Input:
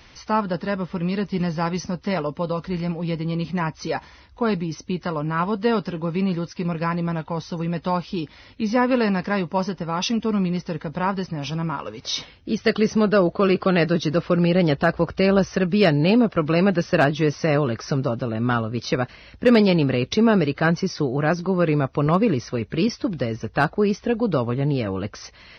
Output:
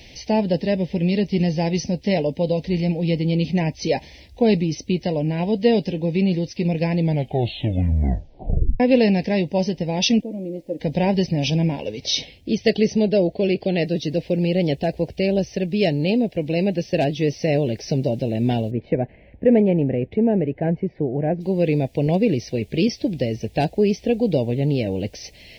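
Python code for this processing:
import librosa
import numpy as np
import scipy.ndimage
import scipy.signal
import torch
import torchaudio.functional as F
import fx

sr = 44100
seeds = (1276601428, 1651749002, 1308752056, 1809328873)

y = fx.double_bandpass(x, sr, hz=420.0, octaves=0.71, at=(10.2, 10.79), fade=0.02)
y = fx.noise_floor_step(y, sr, seeds[0], at_s=13.82, before_db=-70, after_db=-58, tilt_db=3.0)
y = fx.lowpass(y, sr, hz=1800.0, slope=24, at=(18.7, 21.4), fade=0.02)
y = fx.edit(y, sr, fx.tape_stop(start_s=6.98, length_s=1.82), tone=tone)
y = scipy.signal.sosfilt(scipy.signal.cheby1(2, 1.0, [670.0, 2300.0], 'bandstop', fs=sr, output='sos'), y)
y = fx.rider(y, sr, range_db=10, speed_s=2.0)
y = y * 10.0 ** (1.5 / 20.0)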